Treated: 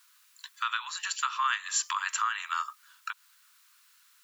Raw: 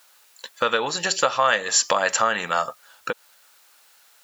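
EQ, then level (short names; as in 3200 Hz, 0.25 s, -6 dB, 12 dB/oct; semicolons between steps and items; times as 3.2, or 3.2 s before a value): dynamic EQ 5100 Hz, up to -7 dB, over -40 dBFS, Q 2.1; steep high-pass 970 Hz 96 dB/oct; dynamic EQ 1800 Hz, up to -4 dB, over -37 dBFS, Q 5.1; -6.5 dB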